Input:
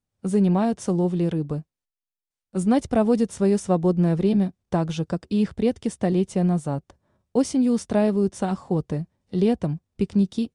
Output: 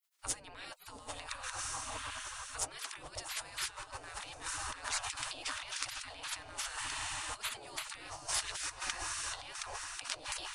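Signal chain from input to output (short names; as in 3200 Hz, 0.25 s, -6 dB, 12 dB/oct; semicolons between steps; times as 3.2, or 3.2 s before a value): diffused feedback echo 0.836 s, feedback 52%, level -11.5 dB; negative-ratio compressor -29 dBFS, ratio -1; spectral gate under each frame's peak -30 dB weak; gain +8.5 dB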